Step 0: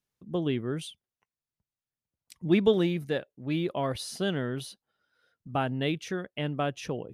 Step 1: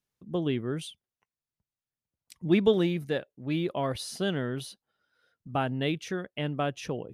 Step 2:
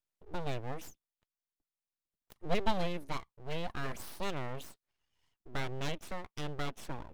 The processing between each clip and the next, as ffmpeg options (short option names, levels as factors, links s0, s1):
-af anull
-af "aeval=exprs='abs(val(0))':c=same,volume=0.562"